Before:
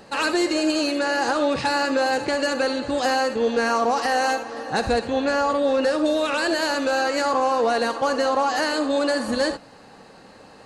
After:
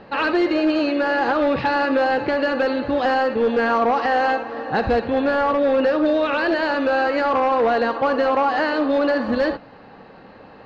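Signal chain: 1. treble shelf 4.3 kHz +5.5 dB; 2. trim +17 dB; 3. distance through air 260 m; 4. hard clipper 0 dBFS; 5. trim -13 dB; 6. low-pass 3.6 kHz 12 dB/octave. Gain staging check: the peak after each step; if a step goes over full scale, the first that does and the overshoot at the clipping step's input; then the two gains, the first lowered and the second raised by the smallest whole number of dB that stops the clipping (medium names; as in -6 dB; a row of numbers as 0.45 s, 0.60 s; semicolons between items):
-10.5 dBFS, +6.5 dBFS, +5.5 dBFS, 0.0 dBFS, -13.0 dBFS, -12.5 dBFS; step 2, 5.5 dB; step 2 +11 dB, step 5 -7 dB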